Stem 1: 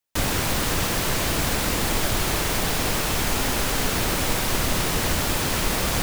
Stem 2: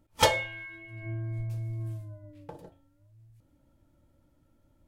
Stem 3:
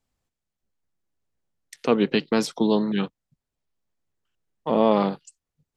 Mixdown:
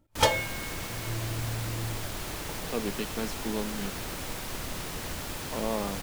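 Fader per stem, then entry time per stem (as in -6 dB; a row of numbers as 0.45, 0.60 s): -13.0, -0.5, -12.5 dB; 0.00, 0.00, 0.85 s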